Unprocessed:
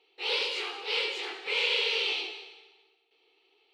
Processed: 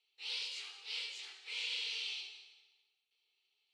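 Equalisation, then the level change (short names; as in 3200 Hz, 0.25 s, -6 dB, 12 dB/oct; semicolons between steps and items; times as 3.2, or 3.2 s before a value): band-pass 7200 Hz, Q 1.2; -2.5 dB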